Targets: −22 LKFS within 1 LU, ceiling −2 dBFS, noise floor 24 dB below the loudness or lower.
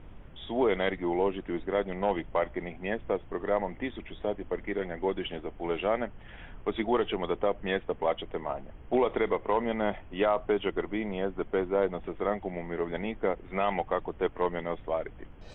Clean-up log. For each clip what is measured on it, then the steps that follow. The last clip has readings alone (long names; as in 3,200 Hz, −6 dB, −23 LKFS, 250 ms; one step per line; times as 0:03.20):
background noise floor −48 dBFS; target noise floor −55 dBFS; integrated loudness −31.0 LKFS; sample peak −14.5 dBFS; target loudness −22.0 LKFS
→ noise reduction from a noise print 7 dB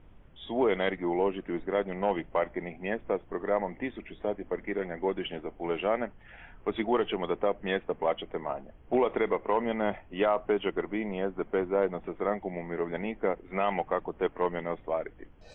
background noise floor −54 dBFS; target noise floor −55 dBFS
→ noise reduction from a noise print 6 dB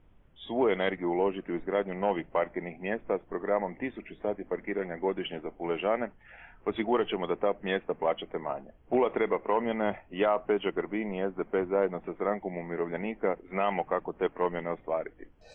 background noise floor −58 dBFS; integrated loudness −31.0 LKFS; sample peak −15.0 dBFS; target loudness −22.0 LKFS
→ level +9 dB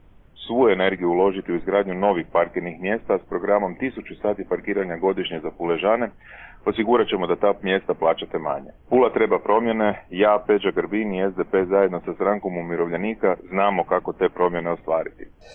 integrated loudness −22.0 LKFS; sample peak −6.0 dBFS; background noise floor −49 dBFS